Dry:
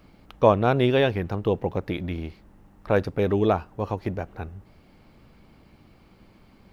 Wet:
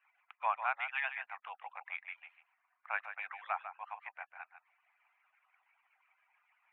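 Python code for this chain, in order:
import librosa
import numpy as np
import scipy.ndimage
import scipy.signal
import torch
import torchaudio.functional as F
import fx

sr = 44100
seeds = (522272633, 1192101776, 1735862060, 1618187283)

p1 = fx.hpss_only(x, sr, part='percussive')
p2 = scipy.signal.sosfilt(scipy.signal.ellip(3, 1.0, 40, [770.0, 2400.0], 'bandpass', fs=sr, output='sos'), p1)
p3 = np.diff(p2, prepend=0.0)
p4 = p3 + fx.echo_single(p3, sr, ms=148, db=-10.0, dry=0)
y = p4 * 10.0 ** (9.0 / 20.0)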